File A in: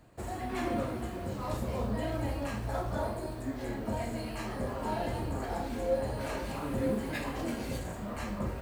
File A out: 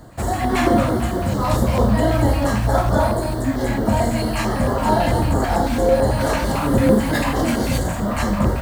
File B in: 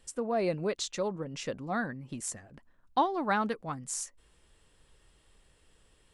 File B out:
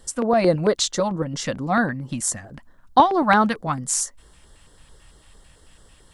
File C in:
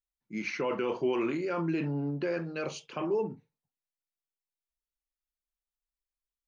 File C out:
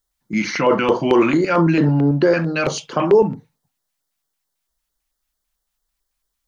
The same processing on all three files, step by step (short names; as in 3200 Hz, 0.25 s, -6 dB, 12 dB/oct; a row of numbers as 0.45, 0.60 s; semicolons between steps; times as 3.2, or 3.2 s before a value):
LFO notch square 4.5 Hz 410–2500 Hz; normalise peaks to -3 dBFS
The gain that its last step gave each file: +17.0, +13.0, +17.0 dB